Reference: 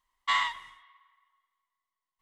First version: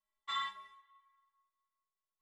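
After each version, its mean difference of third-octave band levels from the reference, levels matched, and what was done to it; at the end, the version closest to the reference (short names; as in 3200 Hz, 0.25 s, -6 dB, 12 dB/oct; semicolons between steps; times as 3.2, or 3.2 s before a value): 3.0 dB: metallic resonator 200 Hz, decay 0.33 s, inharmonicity 0.008; small resonant body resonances 350/600/1400/3500 Hz, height 10 dB, ringing for 45 ms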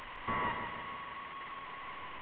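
17.0 dB: delta modulation 16 kbps, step -40.5 dBFS; low shelf 190 Hz -4.5 dB; on a send: darkening echo 0.158 s, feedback 57%, low-pass 2000 Hz, level -5 dB; on the sum: gain +1.5 dB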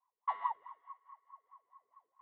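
7.5 dB: LPF 2400 Hz 12 dB/oct; reverse; upward compressor, threshold -43 dBFS; reverse; wah 4.7 Hz 410–1100 Hz, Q 13; gain +8.5 dB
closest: first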